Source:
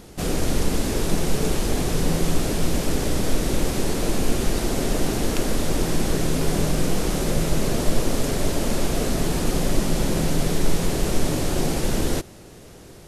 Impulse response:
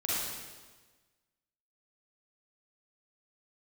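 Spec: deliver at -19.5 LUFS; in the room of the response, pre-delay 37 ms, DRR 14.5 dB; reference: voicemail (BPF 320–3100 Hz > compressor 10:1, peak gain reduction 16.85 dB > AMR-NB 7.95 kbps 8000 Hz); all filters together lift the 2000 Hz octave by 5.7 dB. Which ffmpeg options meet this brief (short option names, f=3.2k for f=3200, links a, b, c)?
-filter_complex "[0:a]equalizer=f=2k:t=o:g=8,asplit=2[a][b];[1:a]atrim=start_sample=2205,adelay=37[c];[b][c]afir=irnorm=-1:irlink=0,volume=-22dB[d];[a][d]amix=inputs=2:normalize=0,highpass=320,lowpass=3.1k,acompressor=threshold=-40dB:ratio=10,volume=25dB" -ar 8000 -c:a libopencore_amrnb -b:a 7950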